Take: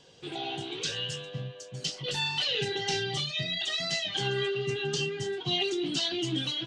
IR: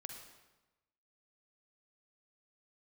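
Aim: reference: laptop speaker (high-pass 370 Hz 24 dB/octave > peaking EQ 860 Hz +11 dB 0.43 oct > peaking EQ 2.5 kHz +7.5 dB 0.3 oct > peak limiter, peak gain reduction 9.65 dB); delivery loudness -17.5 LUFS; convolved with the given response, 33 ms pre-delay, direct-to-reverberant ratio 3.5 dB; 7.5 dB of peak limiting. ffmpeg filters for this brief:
-filter_complex "[0:a]alimiter=limit=0.0631:level=0:latency=1,asplit=2[s0][s1];[1:a]atrim=start_sample=2205,adelay=33[s2];[s1][s2]afir=irnorm=-1:irlink=0,volume=1[s3];[s0][s3]amix=inputs=2:normalize=0,highpass=f=370:w=0.5412,highpass=f=370:w=1.3066,equalizer=f=860:t=o:w=0.43:g=11,equalizer=f=2500:t=o:w=0.3:g=7.5,volume=6.68,alimiter=limit=0.299:level=0:latency=1"

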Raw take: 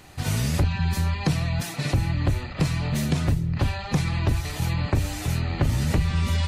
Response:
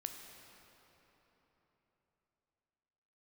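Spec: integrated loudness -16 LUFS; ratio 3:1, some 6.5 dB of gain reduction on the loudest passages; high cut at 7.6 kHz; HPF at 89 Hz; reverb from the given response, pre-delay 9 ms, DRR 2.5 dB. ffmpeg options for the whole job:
-filter_complex "[0:a]highpass=89,lowpass=7600,acompressor=threshold=0.0447:ratio=3,asplit=2[s0][s1];[1:a]atrim=start_sample=2205,adelay=9[s2];[s1][s2]afir=irnorm=-1:irlink=0,volume=0.944[s3];[s0][s3]amix=inputs=2:normalize=0,volume=4.47"

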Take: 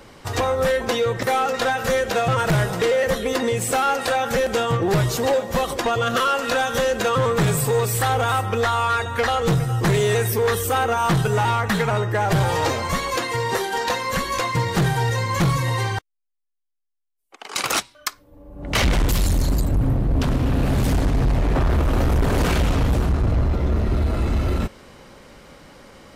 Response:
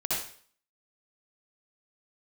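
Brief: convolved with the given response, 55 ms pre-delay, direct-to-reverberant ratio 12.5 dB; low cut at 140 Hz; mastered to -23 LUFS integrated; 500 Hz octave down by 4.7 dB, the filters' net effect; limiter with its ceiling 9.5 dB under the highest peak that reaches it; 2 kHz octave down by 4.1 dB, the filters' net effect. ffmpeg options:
-filter_complex "[0:a]highpass=140,equalizer=f=500:t=o:g=-5,equalizer=f=2000:t=o:g=-5,alimiter=limit=0.1:level=0:latency=1,asplit=2[s0][s1];[1:a]atrim=start_sample=2205,adelay=55[s2];[s1][s2]afir=irnorm=-1:irlink=0,volume=0.0944[s3];[s0][s3]amix=inputs=2:normalize=0,volume=1.88"

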